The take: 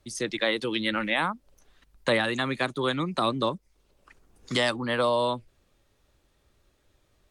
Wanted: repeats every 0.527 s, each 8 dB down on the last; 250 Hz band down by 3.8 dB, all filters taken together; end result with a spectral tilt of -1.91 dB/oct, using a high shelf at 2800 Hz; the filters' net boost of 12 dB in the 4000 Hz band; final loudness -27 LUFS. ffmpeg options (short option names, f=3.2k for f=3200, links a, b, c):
-af "equalizer=f=250:t=o:g=-5,highshelf=f=2.8k:g=8.5,equalizer=f=4k:t=o:g=8,aecho=1:1:527|1054|1581|2108|2635:0.398|0.159|0.0637|0.0255|0.0102,volume=-5dB"